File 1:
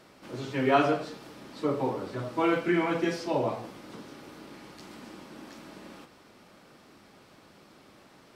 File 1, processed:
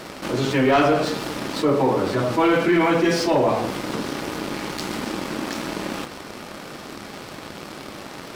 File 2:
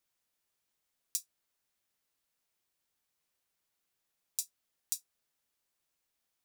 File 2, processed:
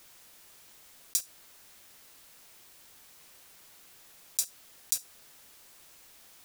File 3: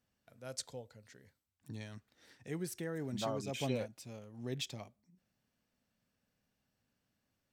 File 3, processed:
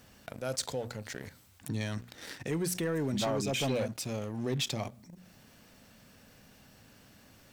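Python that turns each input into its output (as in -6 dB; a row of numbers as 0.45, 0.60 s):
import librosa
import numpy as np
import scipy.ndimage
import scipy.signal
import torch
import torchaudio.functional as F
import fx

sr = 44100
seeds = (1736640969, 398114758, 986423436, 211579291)

y = fx.hum_notches(x, sr, base_hz=60, count=4)
y = fx.leveller(y, sr, passes=2)
y = fx.env_flatten(y, sr, amount_pct=50)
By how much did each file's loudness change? +7.0, +7.0, +7.5 LU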